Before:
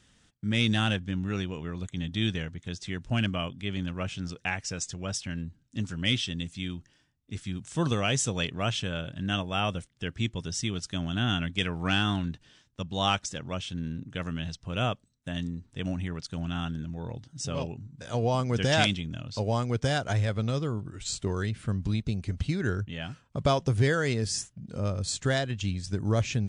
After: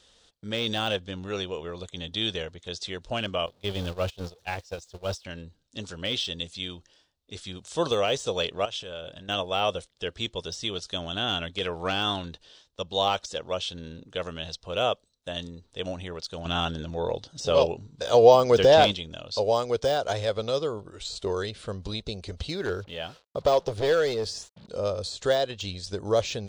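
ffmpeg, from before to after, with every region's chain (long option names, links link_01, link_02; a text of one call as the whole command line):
ffmpeg -i in.wav -filter_complex "[0:a]asettb=1/sr,asplit=3[link_01][link_02][link_03];[link_01]atrim=end=3.464[link_04];[link_02]atrim=start=3.46:end=5.25,asetpts=PTS-STARTPTS,afade=type=in:duration=0.004:curve=qsin,afade=type=out:start_time=1.786:duration=0.004:curve=qsin,aeval=exprs='val(0)+0.5*0.0141*sgn(val(0))':channel_layout=same,equalizer=frequency=66:width=0.58:gain=10,agate=range=-25dB:threshold=-27dB:ratio=16:release=100:detection=peak[link_05];[link_03]atrim=start=5.246[link_06];[link_04][link_05]acrossfade=duration=0.004:curve1=hsin:curve2=qsin[link_07];[link_07][link_06]acrossfade=duration=0.004:curve1=qsin:curve2=hsin,asettb=1/sr,asplit=3[link_08][link_09][link_10];[link_08]atrim=end=8.654[link_11];[link_09]atrim=start=8.65:end=9.29,asetpts=PTS-STARTPTS,afade=type=in:duration=0.004:curve=qsin,afade=type=out:start_time=0.636:duration=0.004:curve=qsin,bandreject=frequency=4200:width=12,acompressor=threshold=-35dB:ratio=12:attack=3.2:release=140:knee=1:detection=peak[link_12];[link_10]atrim=start=9.286[link_13];[link_11][link_12]acrossfade=duration=0.004:curve1=hsin:curve2=qsin[link_14];[link_14][link_13]acrossfade=duration=0.004:curve1=qsin:curve2=hsin,asettb=1/sr,asplit=3[link_15][link_16][link_17];[link_15]atrim=end=16.454[link_18];[link_16]atrim=start=16.45:end=18.92,asetpts=PTS-STARTPTS,afade=type=in:duration=0.004:curve=qsin,afade=type=out:start_time=2.466:duration=0.004:curve=qsin,lowpass=8900,acontrast=77[link_19];[link_17]atrim=start=18.916[link_20];[link_18][link_19]acrossfade=duration=0.004:curve1=hsin:curve2=qsin[link_21];[link_21][link_20]acrossfade=duration=0.004:curve1=qsin:curve2=hsin,asettb=1/sr,asplit=3[link_22][link_23][link_24];[link_22]atrim=end=22.544[link_25];[link_23]atrim=start=22.54:end=24.68,asetpts=PTS-STARTPTS,afade=type=in:duration=0.004:curve=qsin,afade=type=out:start_time=2.136:duration=0.004:curve=qsin,acrusher=bits=8:mix=0:aa=0.5,highshelf=frequency=7300:gain=-9.5,asoftclip=type=hard:threshold=-21.5dB[link_26];[link_24]atrim=start=24.676[link_27];[link_25][link_26]acrossfade=duration=0.004:curve1=hsin:curve2=qsin[link_28];[link_28][link_27]acrossfade=duration=0.004:curve1=qsin:curve2=hsin,deesser=0.9,equalizer=frequency=125:width_type=o:width=1:gain=-11,equalizer=frequency=250:width_type=o:width=1:gain=-7,equalizer=frequency=500:width_type=o:width=1:gain=11,equalizer=frequency=1000:width_type=o:width=1:gain=3,equalizer=frequency=2000:width_type=o:width=1:gain=-5,equalizer=frequency=4000:width_type=o:width=1:gain=11" out.wav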